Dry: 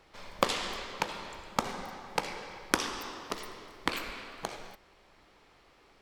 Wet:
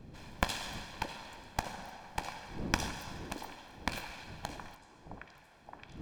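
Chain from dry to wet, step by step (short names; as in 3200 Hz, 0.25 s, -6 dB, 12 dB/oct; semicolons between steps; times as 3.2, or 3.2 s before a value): minimum comb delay 1.2 ms; wind noise 220 Hz -45 dBFS; delay with a stepping band-pass 0.619 s, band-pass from 380 Hz, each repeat 0.7 oct, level -6 dB; gain -4 dB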